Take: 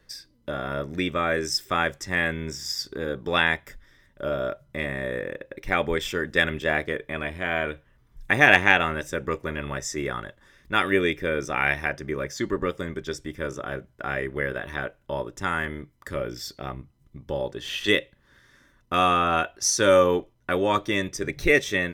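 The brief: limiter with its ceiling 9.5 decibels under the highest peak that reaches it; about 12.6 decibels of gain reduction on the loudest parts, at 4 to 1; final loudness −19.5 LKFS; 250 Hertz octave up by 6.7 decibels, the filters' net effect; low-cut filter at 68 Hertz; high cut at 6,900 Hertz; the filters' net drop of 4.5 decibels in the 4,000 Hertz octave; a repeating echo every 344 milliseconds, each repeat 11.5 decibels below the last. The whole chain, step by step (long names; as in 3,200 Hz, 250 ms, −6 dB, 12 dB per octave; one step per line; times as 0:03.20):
high-pass filter 68 Hz
low-pass filter 6,900 Hz
parametric band 250 Hz +9 dB
parametric band 4,000 Hz −5.5 dB
downward compressor 4 to 1, threshold −27 dBFS
brickwall limiter −20.5 dBFS
repeating echo 344 ms, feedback 27%, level −11.5 dB
level +14.5 dB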